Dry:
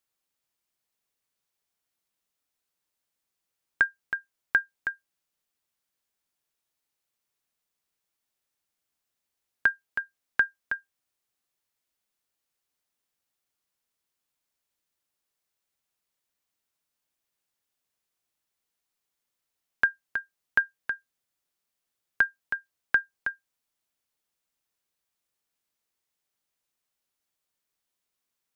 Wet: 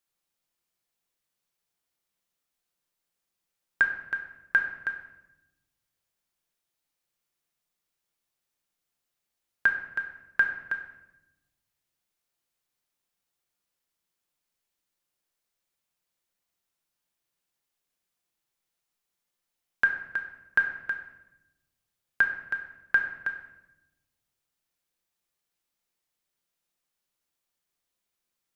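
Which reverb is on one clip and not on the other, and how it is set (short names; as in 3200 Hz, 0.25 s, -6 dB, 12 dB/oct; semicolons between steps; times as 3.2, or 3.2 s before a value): shoebox room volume 380 m³, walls mixed, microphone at 0.86 m; gain -1.5 dB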